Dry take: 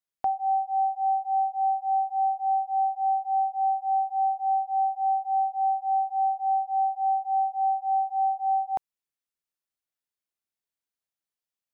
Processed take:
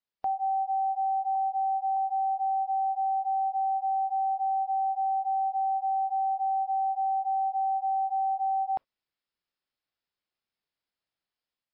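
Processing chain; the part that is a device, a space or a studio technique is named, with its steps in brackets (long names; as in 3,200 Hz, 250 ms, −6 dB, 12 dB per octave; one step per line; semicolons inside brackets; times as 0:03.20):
0:01.35–0:01.97: notch filter 870 Hz, Q 12
low-bitrate web radio (automatic gain control gain up to 5 dB; brickwall limiter −23.5 dBFS, peak gain reduction 9 dB; MP3 32 kbit/s 12,000 Hz)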